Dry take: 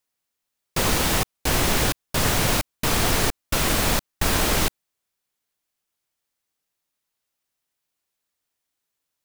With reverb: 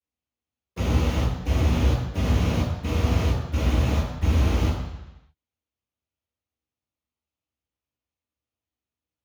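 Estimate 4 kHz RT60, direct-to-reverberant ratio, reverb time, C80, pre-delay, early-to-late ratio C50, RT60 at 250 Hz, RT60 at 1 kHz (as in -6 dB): 1.1 s, -13.5 dB, 1.0 s, 4.5 dB, 5 ms, 1.5 dB, 0.95 s, 1.1 s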